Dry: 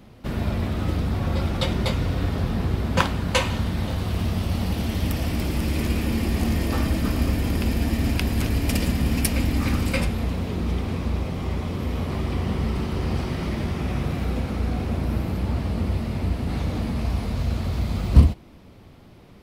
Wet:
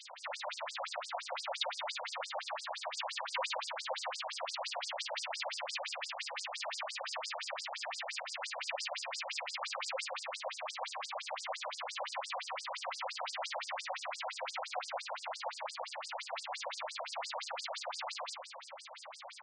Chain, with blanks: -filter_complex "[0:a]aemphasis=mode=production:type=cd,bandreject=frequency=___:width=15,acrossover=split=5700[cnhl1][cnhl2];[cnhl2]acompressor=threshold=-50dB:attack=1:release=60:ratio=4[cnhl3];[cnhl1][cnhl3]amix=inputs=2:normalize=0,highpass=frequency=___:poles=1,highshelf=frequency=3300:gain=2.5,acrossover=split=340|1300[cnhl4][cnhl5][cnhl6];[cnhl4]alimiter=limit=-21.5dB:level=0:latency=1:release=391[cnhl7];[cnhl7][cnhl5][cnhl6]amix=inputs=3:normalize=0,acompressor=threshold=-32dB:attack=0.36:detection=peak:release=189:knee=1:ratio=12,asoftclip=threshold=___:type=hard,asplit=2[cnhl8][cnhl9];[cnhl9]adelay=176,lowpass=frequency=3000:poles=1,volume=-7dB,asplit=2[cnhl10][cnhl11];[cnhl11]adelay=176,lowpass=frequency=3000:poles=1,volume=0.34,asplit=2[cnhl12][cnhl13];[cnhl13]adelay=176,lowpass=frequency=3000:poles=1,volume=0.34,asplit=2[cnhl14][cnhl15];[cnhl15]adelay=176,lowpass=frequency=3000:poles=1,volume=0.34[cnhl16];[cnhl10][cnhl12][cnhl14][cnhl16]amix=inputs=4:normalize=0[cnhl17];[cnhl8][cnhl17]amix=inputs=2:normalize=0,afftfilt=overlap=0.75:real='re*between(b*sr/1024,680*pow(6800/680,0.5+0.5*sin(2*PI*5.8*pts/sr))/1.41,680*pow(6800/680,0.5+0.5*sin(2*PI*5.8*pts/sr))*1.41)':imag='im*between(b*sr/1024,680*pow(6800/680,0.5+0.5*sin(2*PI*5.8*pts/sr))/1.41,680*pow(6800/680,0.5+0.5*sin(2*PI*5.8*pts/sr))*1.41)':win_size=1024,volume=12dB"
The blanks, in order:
5400, 200, -37dB